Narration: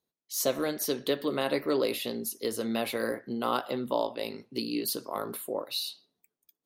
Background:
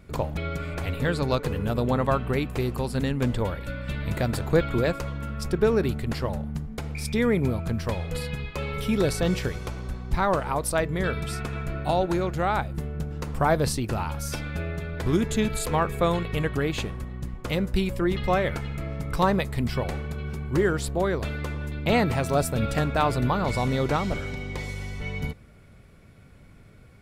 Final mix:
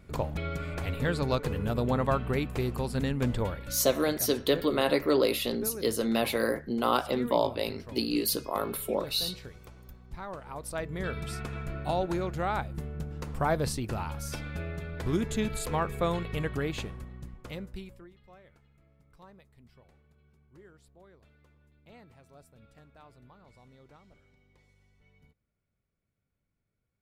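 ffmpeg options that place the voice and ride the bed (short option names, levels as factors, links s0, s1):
-filter_complex "[0:a]adelay=3400,volume=1.41[s0];[1:a]volume=2.51,afade=t=out:st=3.44:d=0.54:silence=0.211349,afade=t=in:st=10.4:d=0.88:silence=0.266073,afade=t=out:st=16.64:d=1.47:silence=0.0473151[s1];[s0][s1]amix=inputs=2:normalize=0"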